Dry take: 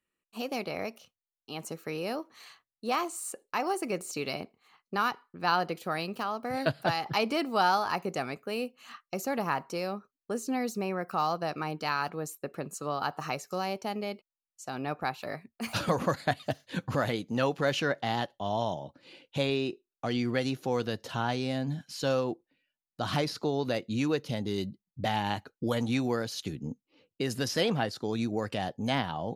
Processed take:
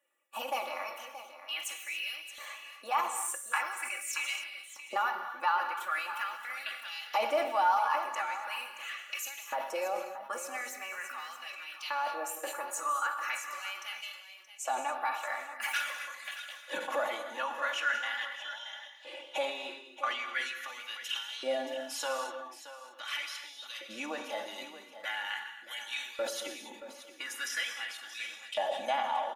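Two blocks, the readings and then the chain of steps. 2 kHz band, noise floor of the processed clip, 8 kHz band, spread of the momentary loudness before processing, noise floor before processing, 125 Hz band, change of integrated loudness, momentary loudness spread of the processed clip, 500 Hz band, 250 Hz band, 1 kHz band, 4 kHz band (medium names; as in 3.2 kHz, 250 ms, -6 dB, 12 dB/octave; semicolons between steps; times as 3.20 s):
+1.5 dB, -52 dBFS, +2.5 dB, 10 LU, under -85 dBFS, under -40 dB, -3.0 dB, 12 LU, -6.5 dB, -19.5 dB, -1.0 dB, -1.0 dB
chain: coarse spectral quantiser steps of 15 dB; high-pass 290 Hz 6 dB/octave; peaking EQ 4.5 kHz -14.5 dB 0.37 oct; compression 4:1, threshold -41 dBFS, peak gain reduction 16 dB; LFO high-pass saw up 0.42 Hz 560–3600 Hz; comb 3.5 ms, depth 86%; delay 625 ms -13 dB; gated-style reverb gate 310 ms flat, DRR 6 dB; decay stretcher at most 81 dB/s; trim +5.5 dB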